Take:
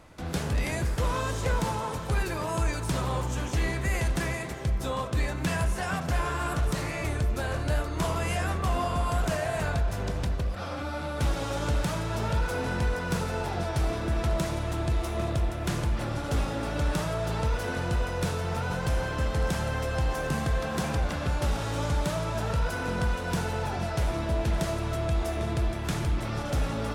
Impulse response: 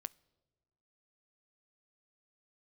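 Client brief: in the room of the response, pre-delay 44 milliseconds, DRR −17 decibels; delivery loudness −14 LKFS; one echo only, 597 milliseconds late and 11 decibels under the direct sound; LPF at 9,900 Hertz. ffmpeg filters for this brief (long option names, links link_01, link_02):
-filter_complex "[0:a]lowpass=9900,aecho=1:1:597:0.282,asplit=2[link_01][link_02];[1:a]atrim=start_sample=2205,adelay=44[link_03];[link_02][link_03]afir=irnorm=-1:irlink=0,volume=20.5dB[link_04];[link_01][link_04]amix=inputs=2:normalize=0,volume=-1.5dB"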